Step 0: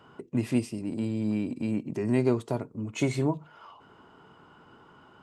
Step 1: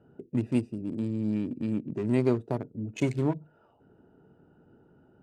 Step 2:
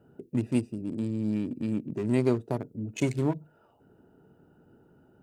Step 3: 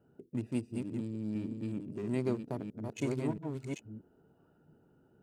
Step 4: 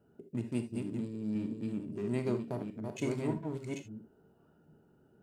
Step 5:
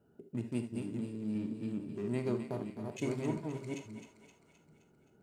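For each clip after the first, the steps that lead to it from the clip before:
local Wiener filter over 41 samples
treble shelf 6.5 kHz +9.5 dB
chunks repeated in reverse 676 ms, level -4 dB; trim -8 dB
gated-style reverb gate 100 ms flat, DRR 6.5 dB
thinning echo 261 ms, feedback 57%, high-pass 580 Hz, level -8.5 dB; trim -1.5 dB

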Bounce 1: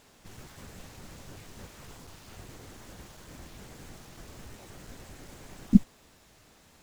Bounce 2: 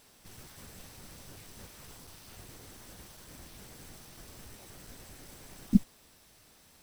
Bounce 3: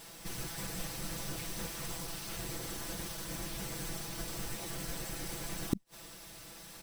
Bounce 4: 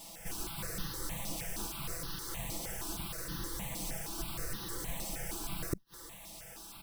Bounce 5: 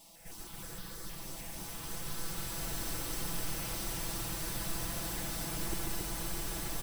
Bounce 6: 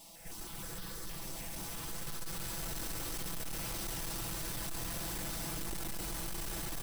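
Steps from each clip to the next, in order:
treble shelf 4.6 kHz +10 dB; band-stop 6.9 kHz, Q 7.3; trim -4.5 dB
comb 6 ms, depth 92%; inverted gate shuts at -22 dBFS, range -38 dB; trim +7.5 dB
stepped phaser 6.4 Hz 420–2300 Hz; trim +3 dB
loudspeakers at several distances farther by 48 m -5 dB, 95 m -2 dB; swelling reverb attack 2200 ms, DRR -7 dB; trim -8 dB
saturation -38 dBFS, distortion -10 dB; trim +3 dB

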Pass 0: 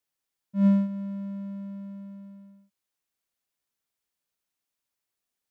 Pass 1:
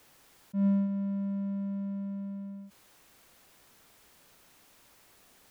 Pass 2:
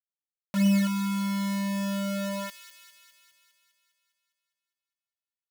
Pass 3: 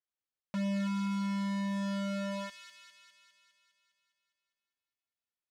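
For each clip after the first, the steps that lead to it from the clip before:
treble shelf 2.3 kHz -8 dB; level flattener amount 50%; trim -6.5 dB
word length cut 6-bit, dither none; feedback echo behind a high-pass 203 ms, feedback 63%, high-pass 2.4 kHz, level -8 dB; trim +4 dB
hard clipper -30.5 dBFS, distortion -8 dB; distance through air 79 m

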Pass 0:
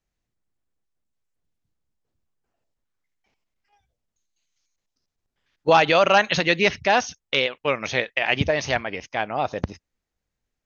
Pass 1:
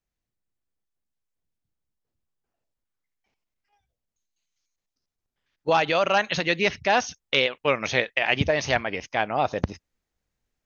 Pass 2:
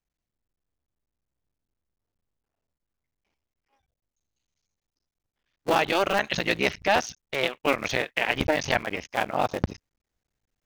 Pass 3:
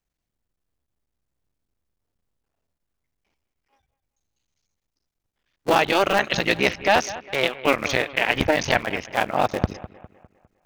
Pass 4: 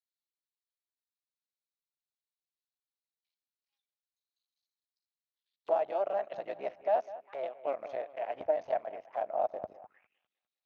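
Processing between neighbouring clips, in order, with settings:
gain riding within 3 dB 0.5 s; trim -2 dB
cycle switcher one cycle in 3, muted
bucket-brigade echo 202 ms, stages 4096, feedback 44%, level -16 dB; trim +4 dB
auto-wah 650–4100 Hz, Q 6.4, down, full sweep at -25 dBFS; trim -4 dB

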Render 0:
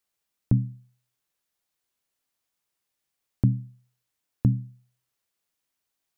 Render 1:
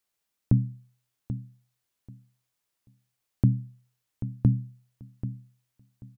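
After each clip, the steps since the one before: feedback delay 786 ms, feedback 20%, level -12 dB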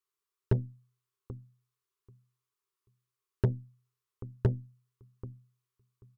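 FFT filter 120 Hz 0 dB, 260 Hz -16 dB, 400 Hz +15 dB, 610 Hz -20 dB, 1.1 kHz +12 dB, 1.6 kHz +1 dB; Chebyshev shaper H 3 -14 dB, 6 -23 dB, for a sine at -13 dBFS; trim -2.5 dB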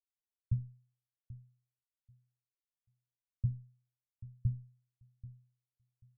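inverse Chebyshev low-pass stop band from 540 Hz, stop band 60 dB; trim -4.5 dB

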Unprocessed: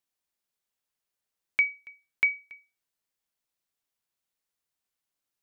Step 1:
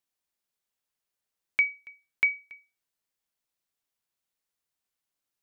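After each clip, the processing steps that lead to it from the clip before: no audible change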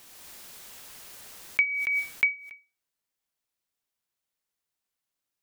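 swell ahead of each attack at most 21 dB/s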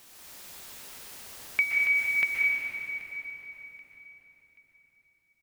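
feedback delay 781 ms, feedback 35%, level -20 dB; reverberation RT60 4.0 s, pre-delay 116 ms, DRR -2.5 dB; trim -2 dB

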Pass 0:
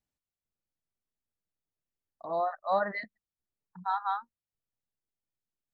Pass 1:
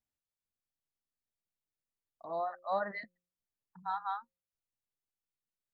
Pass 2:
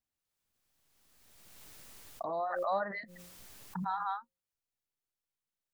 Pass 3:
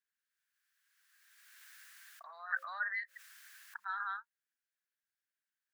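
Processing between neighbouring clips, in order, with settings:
de-hum 178.1 Hz, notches 3; trim -5.5 dB
swell ahead of each attack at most 26 dB/s
ladder high-pass 1.5 kHz, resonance 75%; trim +7.5 dB

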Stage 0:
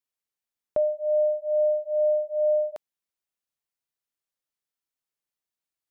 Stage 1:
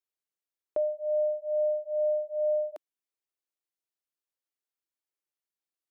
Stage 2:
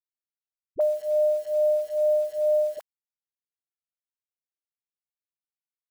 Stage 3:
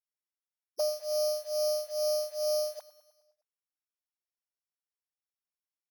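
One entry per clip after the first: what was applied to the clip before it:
resonant low shelf 260 Hz -6.5 dB, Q 3; trim -6 dB
bit crusher 9-bit; phase dispersion highs, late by 47 ms, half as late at 450 Hz; trim +5 dB
sorted samples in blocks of 8 samples; ladder high-pass 530 Hz, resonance 25%; feedback delay 103 ms, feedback 60%, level -17.5 dB

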